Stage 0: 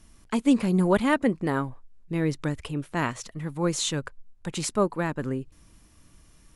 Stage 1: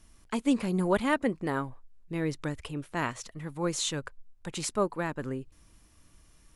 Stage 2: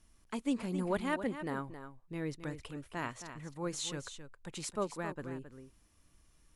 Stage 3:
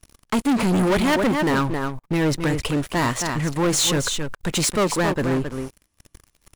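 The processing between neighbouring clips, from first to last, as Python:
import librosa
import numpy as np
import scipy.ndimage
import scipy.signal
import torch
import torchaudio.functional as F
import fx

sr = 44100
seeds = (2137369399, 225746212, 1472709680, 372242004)

y1 = fx.peak_eq(x, sr, hz=180.0, db=-3.5, octaves=1.7)
y1 = y1 * 10.0 ** (-3.0 / 20.0)
y2 = y1 + 10.0 ** (-10.5 / 20.0) * np.pad(y1, (int(268 * sr / 1000.0), 0))[:len(y1)]
y2 = y2 * 10.0 ** (-7.5 / 20.0)
y3 = fx.leveller(y2, sr, passes=5)
y3 = y3 * 10.0 ** (5.5 / 20.0)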